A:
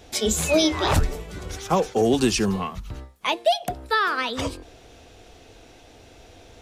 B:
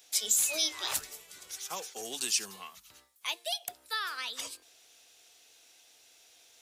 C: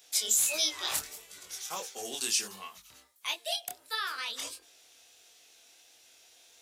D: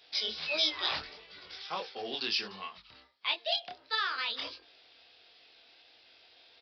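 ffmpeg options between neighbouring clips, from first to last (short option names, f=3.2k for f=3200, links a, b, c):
-af "aderivative"
-af "flanger=delay=20:depth=6.8:speed=1.5,volume=4dB"
-af "aresample=11025,aresample=44100,volume=2.5dB"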